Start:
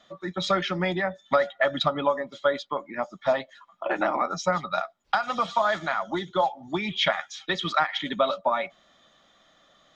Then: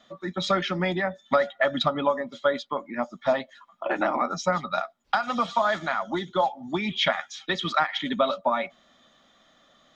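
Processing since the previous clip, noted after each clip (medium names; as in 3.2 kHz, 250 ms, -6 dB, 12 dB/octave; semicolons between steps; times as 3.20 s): peaking EQ 240 Hz +8 dB 0.26 oct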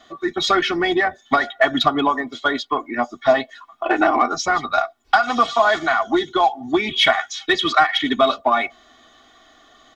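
comb 2.7 ms, depth 89%; in parallel at -10 dB: saturation -22 dBFS, distortion -9 dB; on the sum: trim +4.5 dB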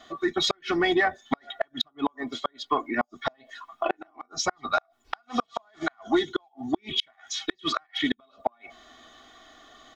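in parallel at -2 dB: compression 5:1, threshold -25 dBFS, peak gain reduction 14 dB; on the sum: inverted gate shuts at -6 dBFS, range -40 dB; trim -6 dB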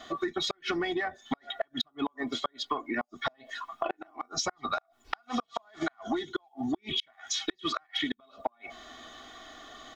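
compression 12:1, threshold -32 dBFS, peak gain reduction 15 dB; trim +4 dB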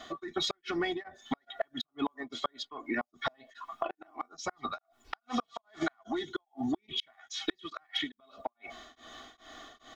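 tremolo of two beating tones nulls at 2.4 Hz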